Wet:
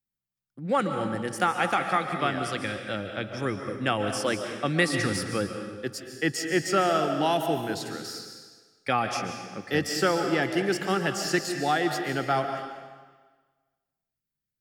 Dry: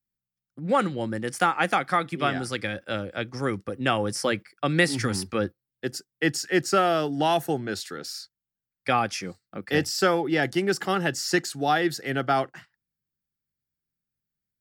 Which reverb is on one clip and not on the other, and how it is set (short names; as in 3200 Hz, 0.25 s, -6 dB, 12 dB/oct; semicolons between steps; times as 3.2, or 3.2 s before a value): digital reverb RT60 1.4 s, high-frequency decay 0.95×, pre-delay 0.1 s, DRR 5.5 dB; gain -2.5 dB